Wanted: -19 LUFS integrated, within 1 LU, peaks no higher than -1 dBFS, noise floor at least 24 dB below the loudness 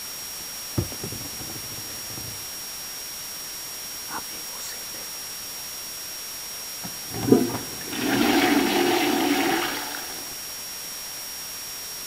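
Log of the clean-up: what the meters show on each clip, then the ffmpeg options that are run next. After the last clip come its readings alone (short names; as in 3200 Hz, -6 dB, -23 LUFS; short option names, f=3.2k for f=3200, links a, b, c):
steady tone 5600 Hz; tone level -36 dBFS; noise floor -35 dBFS; noise floor target -51 dBFS; loudness -27.0 LUFS; peak -2.0 dBFS; loudness target -19.0 LUFS
-> -af "bandreject=f=5.6k:w=30"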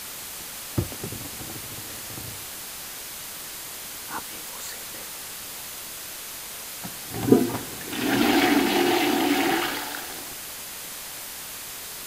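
steady tone none; noise floor -37 dBFS; noise floor target -52 dBFS
-> -af "afftdn=nr=15:nf=-37"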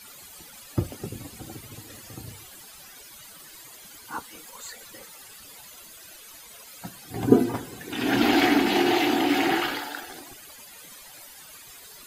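noise floor -47 dBFS; noise floor target -49 dBFS
-> -af "afftdn=nr=6:nf=-47"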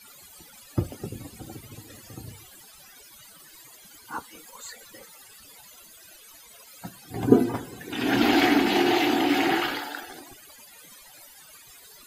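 noise floor -51 dBFS; loudness -24.5 LUFS; peak -2.5 dBFS; loudness target -19.0 LUFS
-> -af "volume=5.5dB,alimiter=limit=-1dB:level=0:latency=1"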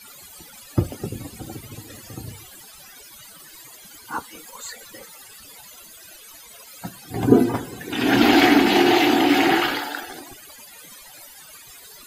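loudness -19.0 LUFS; peak -1.0 dBFS; noise floor -45 dBFS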